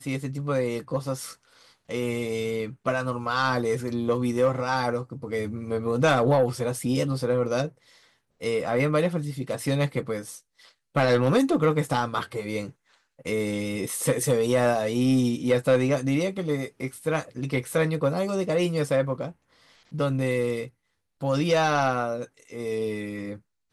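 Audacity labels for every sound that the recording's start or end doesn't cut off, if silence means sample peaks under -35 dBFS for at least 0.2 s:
1.890000	7.680000	sound
8.420000	10.370000	sound
10.960000	12.700000	sound
13.260000	19.310000	sound
19.940000	20.670000	sound
21.220000	22.250000	sound
22.520000	23.360000	sound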